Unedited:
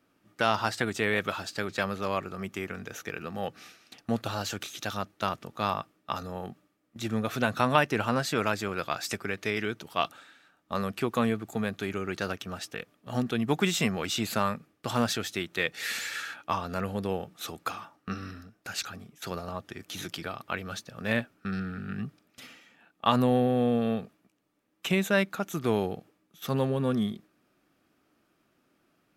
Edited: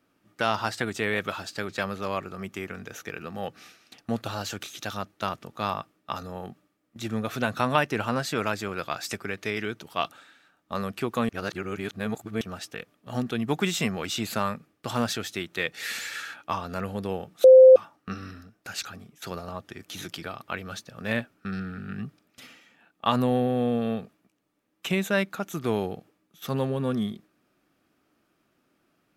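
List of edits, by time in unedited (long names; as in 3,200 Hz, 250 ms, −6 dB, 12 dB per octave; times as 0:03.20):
0:11.29–0:12.41: reverse
0:17.44–0:17.76: beep over 519 Hz −7.5 dBFS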